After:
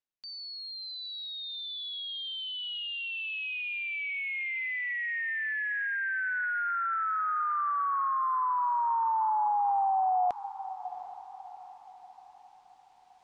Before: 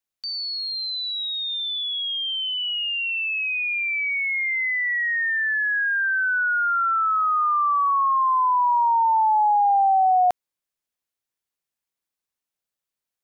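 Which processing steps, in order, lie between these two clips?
reversed playback
upward compression, threshold −34 dBFS
reversed playback
high-frequency loss of the air 110 metres
feedback delay with all-pass diffusion 725 ms, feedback 44%, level −13 dB
level −8.5 dB

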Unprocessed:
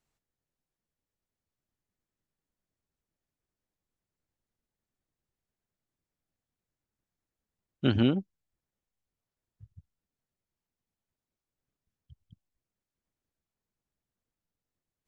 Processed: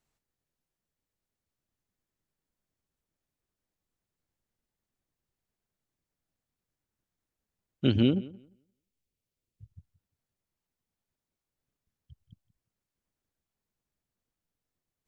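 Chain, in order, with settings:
0:07.85–0:09.70: flat-topped bell 1,100 Hz −8.5 dB
feedback echo with a low-pass in the loop 174 ms, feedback 19%, low-pass 3,600 Hz, level −19.5 dB
level +1 dB

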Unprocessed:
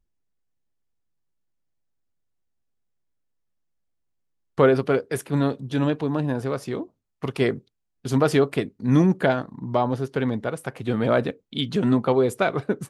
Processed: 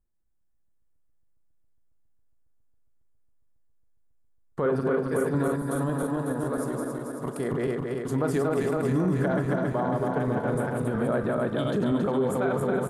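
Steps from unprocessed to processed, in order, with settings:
feedback delay that plays each chunk backwards 137 ms, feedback 81%, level −3.5 dB
flat-topped bell 3,600 Hz −10 dB
double-tracking delay 38 ms −13 dB
single-tap delay 430 ms −21 dB
brickwall limiter −13.5 dBFS, peak gain reduction 9 dB
0:05.56–0:07.52: graphic EQ with 15 bands 100 Hz −10 dB, 400 Hz −4 dB, 2,500 Hz −7 dB, 10,000 Hz +9 dB
level −3.5 dB

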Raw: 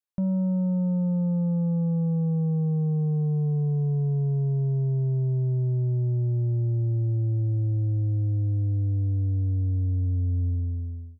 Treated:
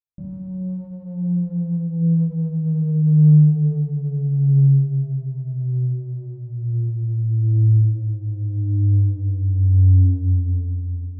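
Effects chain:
drawn EQ curve 110 Hz 0 dB, 260 Hz −9 dB, 550 Hz −15 dB, 900 Hz −24 dB
bucket-brigade delay 220 ms, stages 1,024, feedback 69%, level −22.5 dB
dynamic equaliser 110 Hz, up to −5 dB, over −38 dBFS, Q 6
mains-hum notches 60/120/180/240/300/360/420 Hz
feedback delay network reverb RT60 1.7 s, low-frequency decay 1.3×, high-frequency decay 0.8×, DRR −7 dB
windowed peak hold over 5 samples

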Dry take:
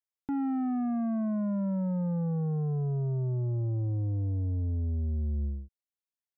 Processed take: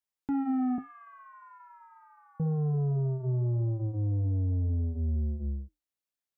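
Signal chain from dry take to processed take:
0:00.78–0:02.40: Butterworth high-pass 930 Hz 72 dB per octave
flanger 0.78 Hz, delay 3.7 ms, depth 8.1 ms, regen −68%
level +5.5 dB

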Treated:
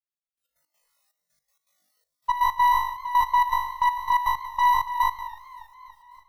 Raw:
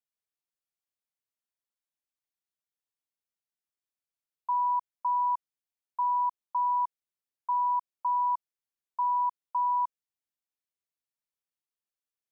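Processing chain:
in parallel at −6 dB: asymmetric clip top −47 dBFS, bottom −28 dBFS
on the sum: automatic gain control gain up to 13 dB
on a send: flutter between parallel walls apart 3.4 metres, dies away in 1.4 s
on the sum: brickwall limiter −16 dBFS, peak gain reduction 7.5 dB
time stretch by overlap-add 0.51×, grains 38 ms
noise reduction from a noise print of the clip's start 21 dB
gate pattern "xx..x.x.xx" 162 BPM −12 dB
feedback echo with a swinging delay time 284 ms, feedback 68%, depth 83 cents, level −21 dB
level +3.5 dB

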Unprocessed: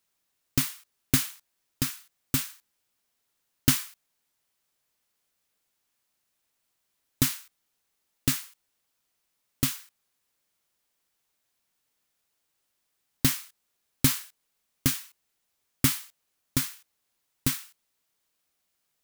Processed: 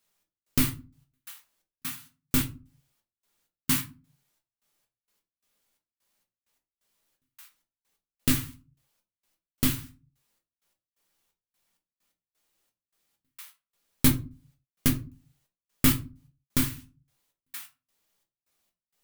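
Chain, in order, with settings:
dynamic equaliser 5,800 Hz, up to −5 dB, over −44 dBFS, Q 1
gate pattern "xx..xx..x..x" 130 BPM −60 dB
rectangular room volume 130 cubic metres, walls furnished, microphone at 1.3 metres

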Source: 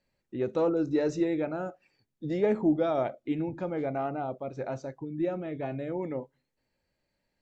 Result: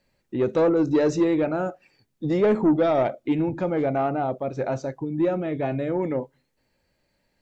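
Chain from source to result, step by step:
soft clipping −21.5 dBFS, distortion −16 dB
level +8.5 dB

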